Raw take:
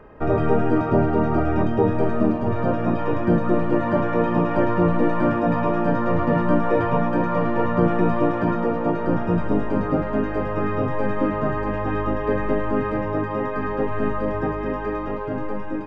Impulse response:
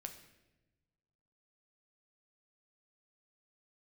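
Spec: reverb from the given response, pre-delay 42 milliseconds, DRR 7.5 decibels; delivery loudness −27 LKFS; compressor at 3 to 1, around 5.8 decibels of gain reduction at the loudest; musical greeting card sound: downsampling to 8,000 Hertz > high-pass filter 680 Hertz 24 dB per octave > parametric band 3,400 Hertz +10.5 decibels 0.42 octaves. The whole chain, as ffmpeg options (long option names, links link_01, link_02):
-filter_complex "[0:a]acompressor=threshold=-21dB:ratio=3,asplit=2[link_01][link_02];[1:a]atrim=start_sample=2205,adelay=42[link_03];[link_02][link_03]afir=irnorm=-1:irlink=0,volume=-3.5dB[link_04];[link_01][link_04]amix=inputs=2:normalize=0,aresample=8000,aresample=44100,highpass=frequency=680:width=0.5412,highpass=frequency=680:width=1.3066,equalizer=frequency=3400:width_type=o:width=0.42:gain=10.5,volume=4.5dB"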